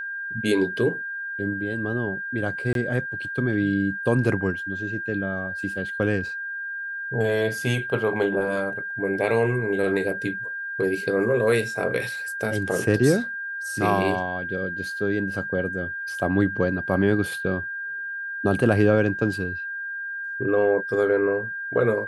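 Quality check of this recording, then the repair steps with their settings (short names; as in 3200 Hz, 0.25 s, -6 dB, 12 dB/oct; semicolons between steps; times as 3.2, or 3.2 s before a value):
tone 1600 Hz -29 dBFS
2.73–2.75 gap 22 ms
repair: notch 1600 Hz, Q 30; interpolate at 2.73, 22 ms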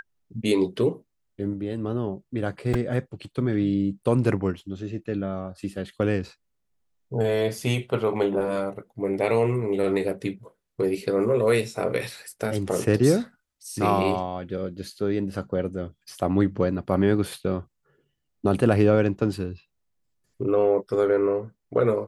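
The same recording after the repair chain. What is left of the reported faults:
none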